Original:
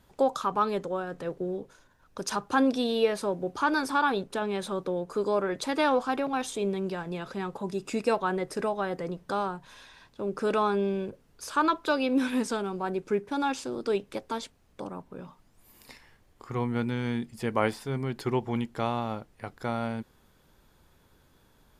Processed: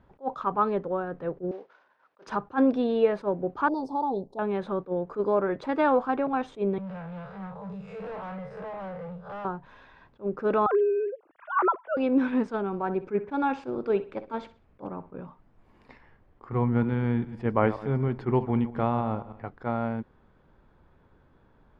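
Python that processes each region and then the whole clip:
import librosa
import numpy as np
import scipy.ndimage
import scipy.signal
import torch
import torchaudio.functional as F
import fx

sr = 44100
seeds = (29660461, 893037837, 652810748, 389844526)

y = fx.chain(x, sr, fx.cvsd(bps=32000),
    fx.highpass(hz=580.0, slope=12), at=(1.51, 2.27))
y = fx.chain(y, sr, fx.ellip_bandstop(low_hz=850.0, high_hz=4300.0, order=3, stop_db=60),
    fx.low_shelf(hz=420.0, db=-4.0), at=(3.68, 4.39))
y = fx.chain(y, sr, fx.spec_blur(span_ms=105.0),
    fx.cheby1_bandstop(low_hz=200.0, high_hz=430.0, order=5),
    fx.clip_hard(threshold_db=-37.0), at=(6.78, 9.45))
y = fx.chain(y, sr, fx.sine_speech(),
    fx.lowpass(hz=2200.0, slope=12),
    fx.band_squash(depth_pct=70), at=(10.66, 11.97))
y = fx.chain(y, sr, fx.peak_eq(hz=2400.0, db=3.5, octaves=0.43),
    fx.echo_feedback(ms=63, feedback_pct=32, wet_db=-15), at=(12.66, 15.23))
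y = fx.chain(y, sr, fx.reverse_delay_fb(ms=104, feedback_pct=43, wet_db=-13.5),
    fx.low_shelf(hz=160.0, db=5.0), at=(16.52, 19.45))
y = scipy.signal.sosfilt(scipy.signal.butter(2, 1600.0, 'lowpass', fs=sr, output='sos'), y)
y = fx.attack_slew(y, sr, db_per_s=380.0)
y = y * librosa.db_to_amplitude(2.5)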